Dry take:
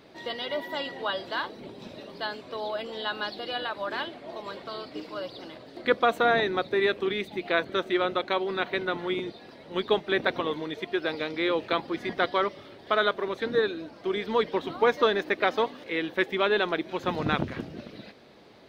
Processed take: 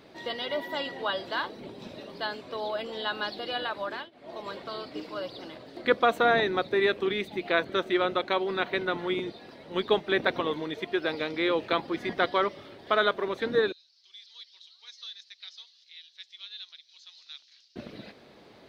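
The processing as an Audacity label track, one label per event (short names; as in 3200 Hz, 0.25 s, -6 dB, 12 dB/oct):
3.720000	4.500000	dip -22.5 dB, fades 0.39 s equal-power
13.720000	17.760000	Butterworth band-pass 4900 Hz, Q 2.2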